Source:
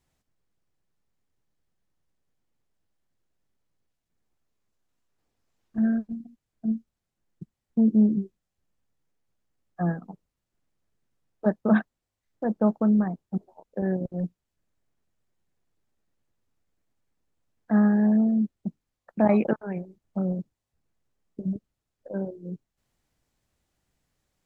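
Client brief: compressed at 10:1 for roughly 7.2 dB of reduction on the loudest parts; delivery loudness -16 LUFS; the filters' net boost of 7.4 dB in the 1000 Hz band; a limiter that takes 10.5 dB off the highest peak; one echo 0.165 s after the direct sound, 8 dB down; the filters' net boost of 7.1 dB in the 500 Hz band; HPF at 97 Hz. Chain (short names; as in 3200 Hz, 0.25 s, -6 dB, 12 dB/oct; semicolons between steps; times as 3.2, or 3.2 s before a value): HPF 97 Hz; bell 500 Hz +7 dB; bell 1000 Hz +7 dB; compressor 10:1, threshold -19 dBFS; limiter -20 dBFS; echo 0.165 s -8 dB; gain +14.5 dB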